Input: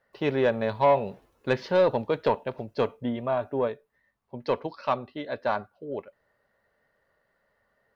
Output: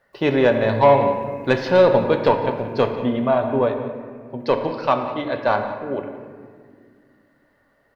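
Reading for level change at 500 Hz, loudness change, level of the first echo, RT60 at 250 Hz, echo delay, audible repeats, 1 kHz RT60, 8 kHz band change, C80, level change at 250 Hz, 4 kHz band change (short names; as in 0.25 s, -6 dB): +8.0 dB, +8.0 dB, -15.5 dB, 3.1 s, 0.179 s, 1, 1.8 s, n/a, 7.5 dB, +9.5 dB, +8.0 dB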